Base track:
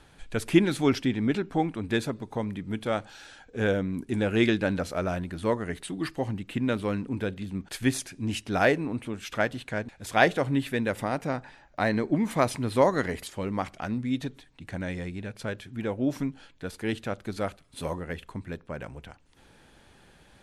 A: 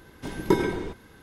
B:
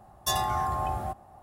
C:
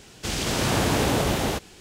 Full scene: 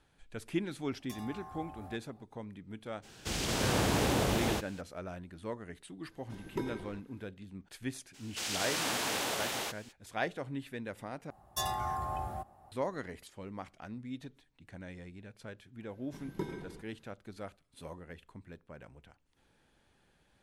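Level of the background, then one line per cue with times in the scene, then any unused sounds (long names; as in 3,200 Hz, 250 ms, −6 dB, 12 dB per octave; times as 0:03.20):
base track −13.5 dB
0:00.83: mix in B −14.5 dB + downward compressor, threshold −30 dBFS
0:03.02: mix in C −7 dB, fades 0.02 s
0:06.07: mix in A −15.5 dB
0:08.13: mix in C −5.5 dB, fades 0.02 s + high-pass filter 1,200 Hz 6 dB per octave
0:11.30: overwrite with B −7 dB
0:15.89: mix in A −18 dB + parametric band 160 Hz +8 dB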